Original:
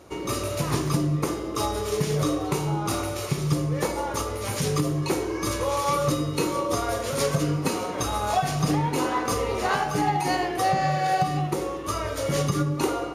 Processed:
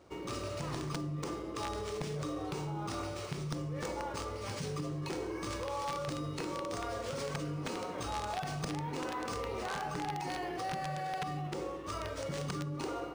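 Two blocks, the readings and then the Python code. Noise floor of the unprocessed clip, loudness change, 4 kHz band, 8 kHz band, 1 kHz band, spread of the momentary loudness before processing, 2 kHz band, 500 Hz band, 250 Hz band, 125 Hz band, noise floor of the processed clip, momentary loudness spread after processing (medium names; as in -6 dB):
-32 dBFS, -12.5 dB, -11.0 dB, -15.0 dB, -12.5 dB, 5 LU, -11.0 dB, -12.0 dB, -12.5 dB, -13.0 dB, -42 dBFS, 2 LU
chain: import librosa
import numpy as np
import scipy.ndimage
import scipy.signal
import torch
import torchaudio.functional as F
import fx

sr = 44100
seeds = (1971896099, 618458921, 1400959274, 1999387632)

p1 = fx.over_compress(x, sr, threshold_db=-28.0, ratio=-1.0)
p2 = x + (p1 * 10.0 ** (-1.0 / 20.0))
p3 = fx.comb_fb(p2, sr, f0_hz=170.0, decay_s=0.59, harmonics='odd', damping=0.0, mix_pct=60)
p4 = (np.mod(10.0 ** (19.0 / 20.0) * p3 + 1.0, 2.0) - 1.0) / 10.0 ** (19.0 / 20.0)
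p5 = np.interp(np.arange(len(p4)), np.arange(len(p4))[::3], p4[::3])
y = p5 * 10.0 ** (-9.0 / 20.0)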